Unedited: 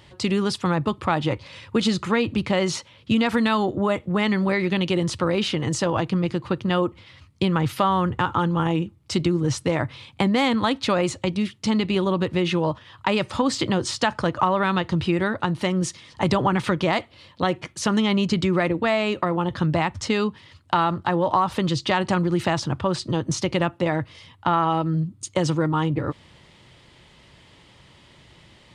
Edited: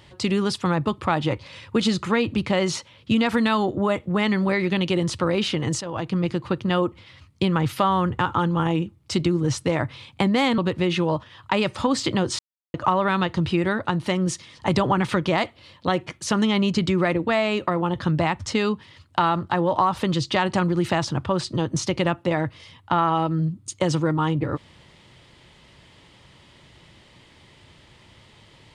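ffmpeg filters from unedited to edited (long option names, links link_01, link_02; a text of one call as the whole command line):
ffmpeg -i in.wav -filter_complex "[0:a]asplit=5[link_01][link_02][link_03][link_04][link_05];[link_01]atrim=end=5.81,asetpts=PTS-STARTPTS,afade=type=out:start_time=5.806:duration=0.004:curve=hsin:silence=0.223872[link_06];[link_02]atrim=start=5.81:end=10.582,asetpts=PTS-STARTPTS,afade=type=in:duration=0.41:silence=0.223872[link_07];[link_03]atrim=start=12.128:end=13.94,asetpts=PTS-STARTPTS,afade=type=out:start_time=1.808:duration=0.004:curve=hsin[link_08];[link_04]atrim=start=13.94:end=14.29,asetpts=PTS-STARTPTS,volume=0[link_09];[link_05]atrim=start=14.29,asetpts=PTS-STARTPTS,afade=type=in:duration=0.004:curve=hsin[link_10];[link_06][link_07]concat=n=2:v=0:a=1[link_11];[link_08][link_09][link_10]concat=n=3:v=0:a=1[link_12];[link_11][link_12]acrossfade=duration=0.004:curve1=hsin:curve2=hsin" out.wav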